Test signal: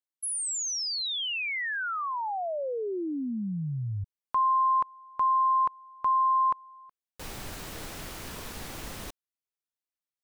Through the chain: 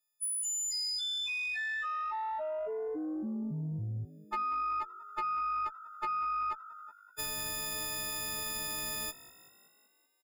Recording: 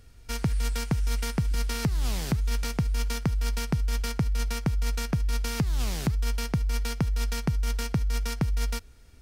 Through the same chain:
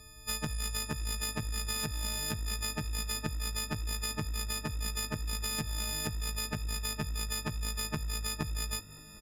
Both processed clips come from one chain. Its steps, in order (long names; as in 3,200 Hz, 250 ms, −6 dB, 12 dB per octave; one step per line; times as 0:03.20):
every partial snapped to a pitch grid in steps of 6 semitones
high-shelf EQ 5,800 Hz −4.5 dB
downward compressor 3 to 1, threshold −36 dBFS
echo with shifted repeats 190 ms, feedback 61%, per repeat +50 Hz, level −18.5 dB
harmonic generator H 2 −15 dB, 4 −6 dB, 5 −42 dB, 6 −14 dB, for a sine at −21 dBFS